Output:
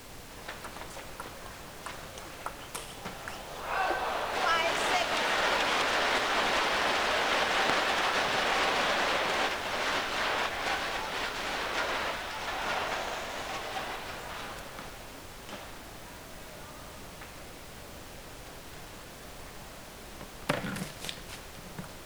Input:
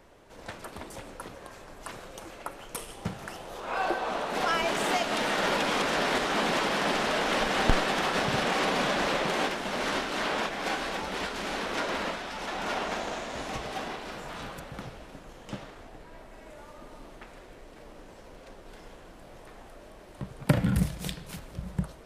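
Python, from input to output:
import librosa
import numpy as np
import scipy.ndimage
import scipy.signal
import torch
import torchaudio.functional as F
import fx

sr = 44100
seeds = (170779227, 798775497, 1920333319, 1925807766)

y = fx.weighting(x, sr, curve='A')
y = fx.dmg_noise_colour(y, sr, seeds[0], colour='pink', level_db=-46.0)
y = fx.doppler_dist(y, sr, depth_ms=0.22)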